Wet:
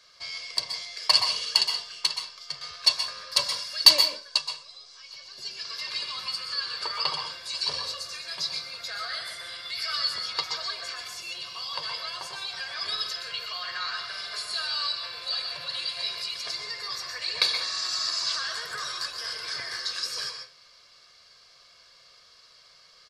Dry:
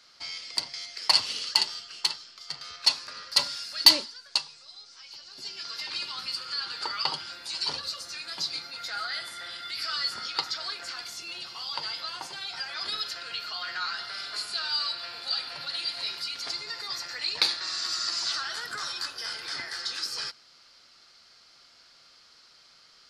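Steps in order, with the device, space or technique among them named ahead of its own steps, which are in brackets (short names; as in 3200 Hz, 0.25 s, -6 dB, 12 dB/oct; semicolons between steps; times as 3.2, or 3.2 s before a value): microphone above a desk (comb 1.8 ms, depth 66%; reverb RT60 0.30 s, pre-delay 0.118 s, DRR 4.5 dB); gain -1 dB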